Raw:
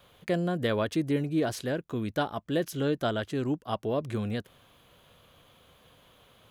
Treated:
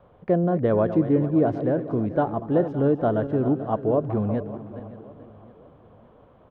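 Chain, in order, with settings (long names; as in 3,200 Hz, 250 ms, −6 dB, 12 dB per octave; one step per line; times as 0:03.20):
feedback delay that plays each chunk backwards 218 ms, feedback 56%, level −11.5 dB
Chebyshev low-pass filter 800 Hz, order 2
repeating echo 564 ms, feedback 45%, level −18 dB
level +7.5 dB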